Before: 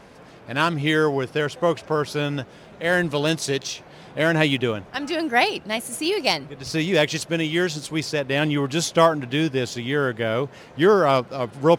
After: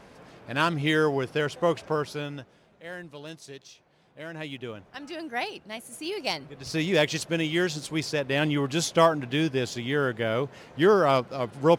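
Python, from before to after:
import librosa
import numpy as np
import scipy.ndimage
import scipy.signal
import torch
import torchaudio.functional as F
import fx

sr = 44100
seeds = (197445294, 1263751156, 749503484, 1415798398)

y = fx.gain(x, sr, db=fx.line((1.89, -3.5), (2.27, -10.0), (2.97, -19.5), (4.3, -19.5), (4.8, -12.0), (5.85, -12.0), (6.86, -3.5)))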